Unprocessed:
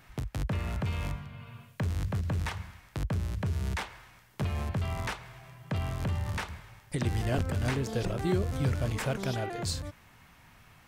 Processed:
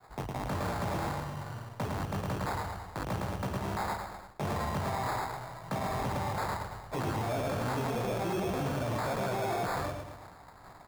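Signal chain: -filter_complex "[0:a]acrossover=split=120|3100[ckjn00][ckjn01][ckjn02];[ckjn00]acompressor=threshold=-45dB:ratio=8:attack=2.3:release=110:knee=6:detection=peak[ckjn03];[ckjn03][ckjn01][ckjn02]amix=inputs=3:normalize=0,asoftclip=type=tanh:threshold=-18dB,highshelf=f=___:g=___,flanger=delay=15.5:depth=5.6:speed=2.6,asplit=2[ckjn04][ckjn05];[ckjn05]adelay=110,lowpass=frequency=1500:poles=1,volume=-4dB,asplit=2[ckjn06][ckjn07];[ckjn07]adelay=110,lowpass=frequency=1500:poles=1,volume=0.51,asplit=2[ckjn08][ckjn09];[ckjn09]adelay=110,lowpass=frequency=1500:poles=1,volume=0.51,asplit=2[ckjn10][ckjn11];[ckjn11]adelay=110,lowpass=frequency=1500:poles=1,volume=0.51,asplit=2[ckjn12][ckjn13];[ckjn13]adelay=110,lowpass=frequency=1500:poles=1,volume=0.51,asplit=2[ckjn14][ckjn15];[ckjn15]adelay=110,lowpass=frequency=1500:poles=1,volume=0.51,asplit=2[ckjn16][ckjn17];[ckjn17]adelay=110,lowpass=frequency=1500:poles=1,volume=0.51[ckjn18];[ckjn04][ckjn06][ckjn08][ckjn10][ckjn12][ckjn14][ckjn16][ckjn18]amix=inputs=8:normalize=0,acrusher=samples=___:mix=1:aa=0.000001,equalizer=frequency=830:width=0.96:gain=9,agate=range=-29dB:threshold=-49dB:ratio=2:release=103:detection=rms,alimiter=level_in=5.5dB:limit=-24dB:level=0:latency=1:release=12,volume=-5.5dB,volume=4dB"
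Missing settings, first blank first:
2200, 4.5, 15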